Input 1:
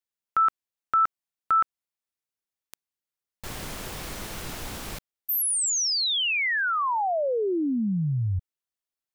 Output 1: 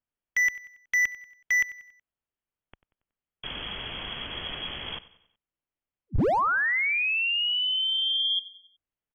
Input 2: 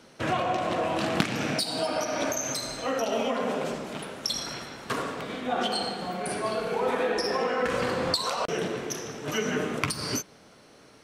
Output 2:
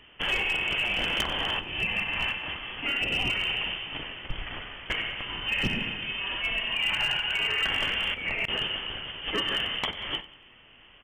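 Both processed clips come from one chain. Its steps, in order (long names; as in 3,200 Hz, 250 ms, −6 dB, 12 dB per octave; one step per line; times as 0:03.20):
voice inversion scrambler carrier 3,300 Hz
spectral tilt −2 dB per octave
gain into a clipping stage and back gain 22.5 dB
on a send: repeating echo 93 ms, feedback 46%, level −18 dB
on the sum: level +2 dB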